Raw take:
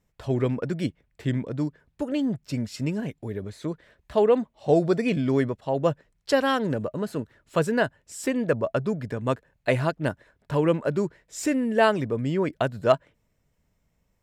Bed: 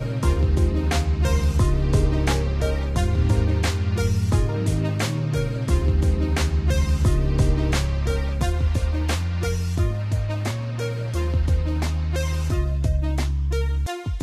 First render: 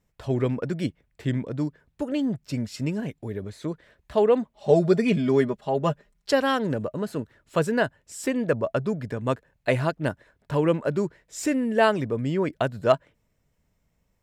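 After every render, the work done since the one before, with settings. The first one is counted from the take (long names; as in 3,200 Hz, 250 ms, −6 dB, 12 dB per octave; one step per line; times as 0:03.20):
0:04.54–0:06.31: comb filter 4.9 ms, depth 66%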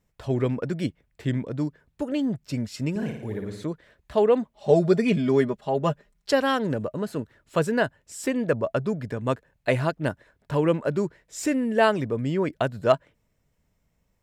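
0:02.90–0:03.64: flutter between parallel walls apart 9.6 metres, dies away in 0.66 s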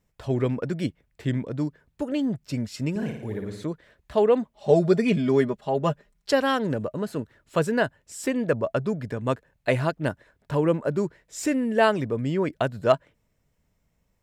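0:10.55–0:10.98: parametric band 3,000 Hz −5 dB 1.6 octaves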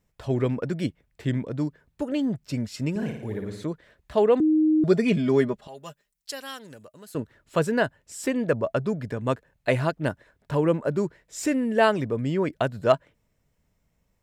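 0:04.40–0:04.84: beep over 311 Hz −16.5 dBFS
0:05.67–0:07.15: first-order pre-emphasis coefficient 0.9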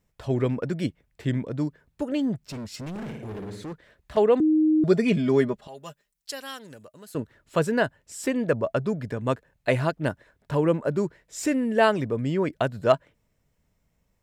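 0:02.50–0:04.17: gain into a clipping stage and back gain 32.5 dB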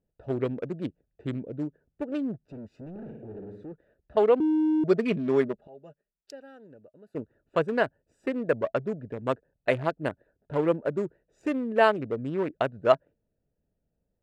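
adaptive Wiener filter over 41 samples
bass and treble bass −9 dB, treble −8 dB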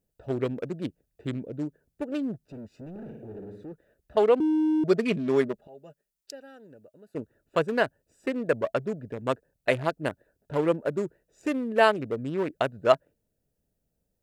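high-shelf EQ 4,400 Hz +11.5 dB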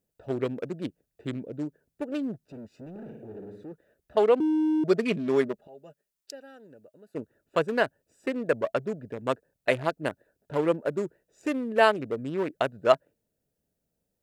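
low-shelf EQ 78 Hz −11 dB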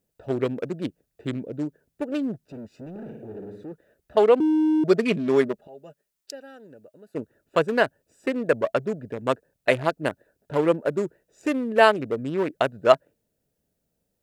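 level +4 dB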